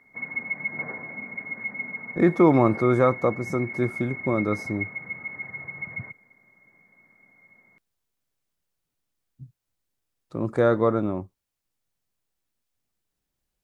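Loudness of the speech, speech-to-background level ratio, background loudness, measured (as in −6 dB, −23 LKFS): −23.0 LKFS, 10.0 dB, −33.0 LKFS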